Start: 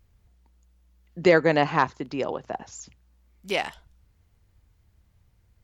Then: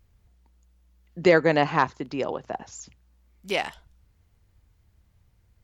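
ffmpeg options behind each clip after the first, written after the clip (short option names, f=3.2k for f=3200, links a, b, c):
-af anull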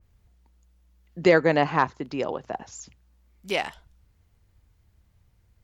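-af "adynamicequalizer=threshold=0.0178:dfrequency=2400:dqfactor=0.7:tfrequency=2400:tqfactor=0.7:attack=5:release=100:ratio=0.375:range=2.5:mode=cutabove:tftype=highshelf"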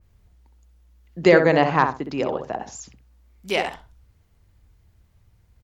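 -filter_complex "[0:a]asplit=2[a][b];[b]adelay=64,lowpass=f=1.2k:p=1,volume=-5dB,asplit=2[c][d];[d]adelay=64,lowpass=f=1.2k:p=1,volume=0.23,asplit=2[e][f];[f]adelay=64,lowpass=f=1.2k:p=1,volume=0.23[g];[a][c][e][g]amix=inputs=4:normalize=0,volume=3dB"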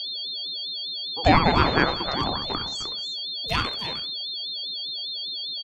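-af "aecho=1:1:306:0.316,aeval=exprs='val(0)+0.0501*sin(2*PI*3900*n/s)':c=same,aeval=exprs='val(0)*sin(2*PI*450*n/s+450*0.5/5*sin(2*PI*5*n/s))':c=same"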